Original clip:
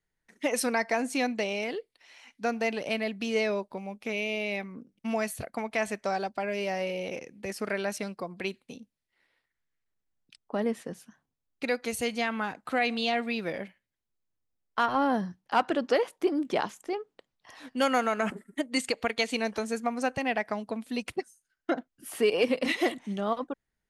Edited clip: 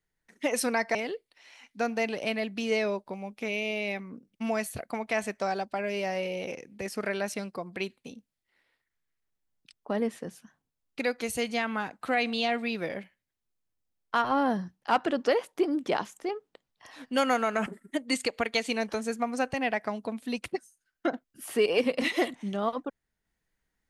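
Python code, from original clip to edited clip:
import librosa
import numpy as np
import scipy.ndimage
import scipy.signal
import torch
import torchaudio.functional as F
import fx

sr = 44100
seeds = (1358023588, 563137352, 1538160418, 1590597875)

y = fx.edit(x, sr, fx.cut(start_s=0.95, length_s=0.64), tone=tone)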